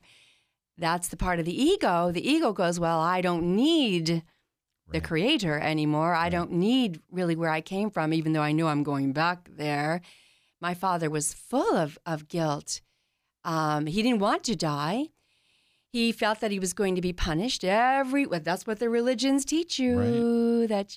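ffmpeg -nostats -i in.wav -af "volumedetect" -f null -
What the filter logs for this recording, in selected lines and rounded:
mean_volume: -26.9 dB
max_volume: -12.3 dB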